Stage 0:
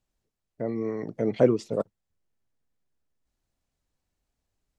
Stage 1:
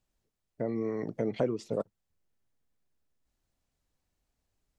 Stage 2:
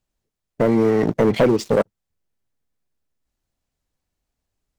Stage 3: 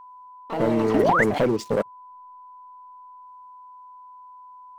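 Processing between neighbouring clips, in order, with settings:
compression 3:1, threshold -28 dBFS, peak gain reduction 11.5 dB
waveshaping leveller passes 3; trim +7 dB
ever faster or slower copies 99 ms, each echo +6 st, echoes 2, each echo -6 dB; whistle 1 kHz -37 dBFS; painted sound rise, 0.94–1.24 s, 240–2200 Hz -14 dBFS; trim -5.5 dB

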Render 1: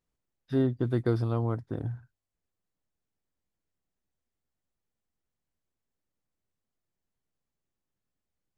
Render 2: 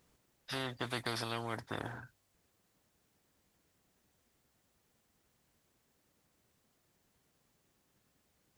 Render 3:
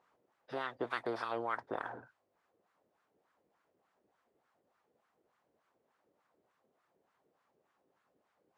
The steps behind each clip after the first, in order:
high-pass 88 Hz 6 dB/octave; spectrum-flattening compressor 4:1; trim -7.5 dB
wah-wah 3.4 Hz 420–1300 Hz, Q 2.1; trim +8 dB

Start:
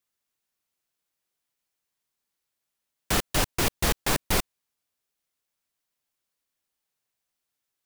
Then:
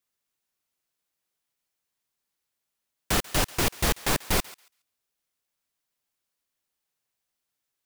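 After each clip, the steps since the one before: thinning echo 139 ms, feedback 18%, high-pass 1.1 kHz, level -18 dB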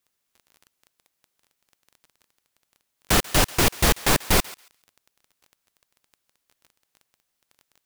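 crackle 16 per s -43 dBFS; trim +5.5 dB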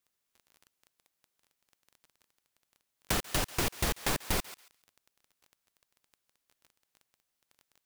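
compression 6:1, threshold -21 dBFS, peak gain reduction 7.5 dB; trim -5.5 dB

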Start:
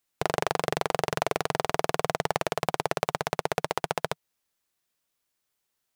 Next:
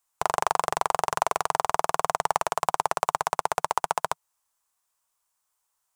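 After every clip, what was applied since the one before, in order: graphic EQ 125/250/500/1000/2000/4000/8000 Hz -6/-12/-4/+11/-4/-4/+7 dB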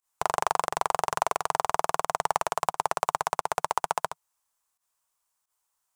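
volume shaper 88 bpm, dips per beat 1, -18 dB, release 87 ms; trim -1.5 dB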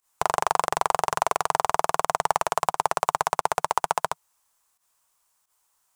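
peak limiter -13 dBFS, peak gain reduction 6.5 dB; trim +8.5 dB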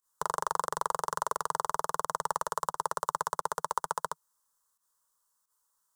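static phaser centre 480 Hz, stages 8; trim -5.5 dB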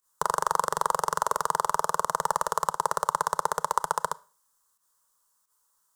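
Schroeder reverb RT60 0.38 s, combs from 25 ms, DRR 20 dB; trim +5.5 dB

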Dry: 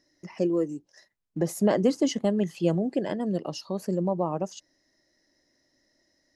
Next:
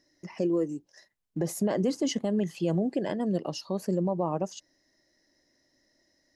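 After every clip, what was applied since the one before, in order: band-stop 1.3 kHz, Q 22; peak limiter -18.5 dBFS, peak gain reduction 7.5 dB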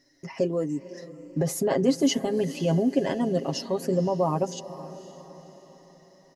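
comb 7.4 ms, depth 72%; echo that smears into a reverb 509 ms, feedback 47%, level -15 dB; trim +3 dB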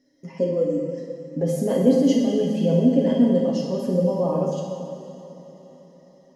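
small resonant body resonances 230/480/3200 Hz, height 17 dB, ringing for 50 ms; reverberation RT60 1.8 s, pre-delay 6 ms, DRR -1.5 dB; trim -9 dB

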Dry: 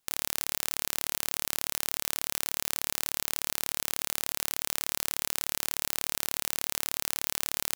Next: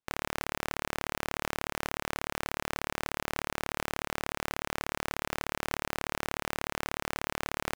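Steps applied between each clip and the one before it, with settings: low-pass 2.2 kHz 6 dB/octave; waveshaping leveller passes 5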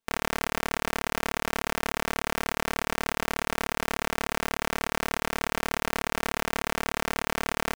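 comb 4.4 ms, depth 74%; trim +3.5 dB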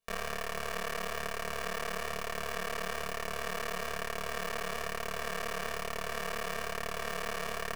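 peak limiter -19 dBFS, peak gain reduction 8.5 dB; reverberation RT60 1.3 s, pre-delay 10 ms, DRR 14 dB; detune thickener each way 38 cents; trim +3 dB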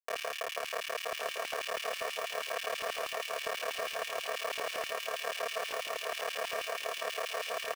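small samples zeroed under -38.5 dBFS; LFO high-pass square 6.2 Hz 560–2800 Hz; on a send: feedback delay 1111 ms, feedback 28%, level -7.5 dB; on the sum: trim -1.5 dB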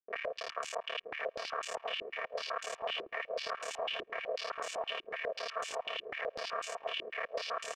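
in parallel at -11.5 dB: saturation -31 dBFS, distortion -13 dB; on the sum: step-sequenced low-pass 8 Hz 360–7300 Hz; trim -7 dB

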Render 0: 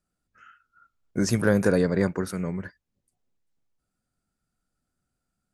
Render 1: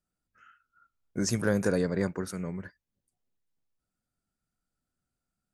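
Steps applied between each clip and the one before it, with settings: dynamic bell 6.7 kHz, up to +6 dB, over -48 dBFS, Q 1.4; trim -5.5 dB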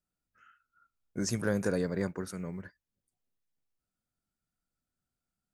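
short-mantissa float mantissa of 6-bit; trim -3.5 dB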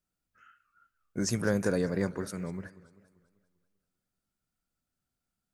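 modulated delay 196 ms, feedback 50%, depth 210 cents, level -18 dB; trim +2 dB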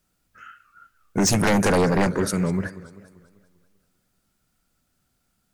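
sine folder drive 11 dB, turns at -14.5 dBFS

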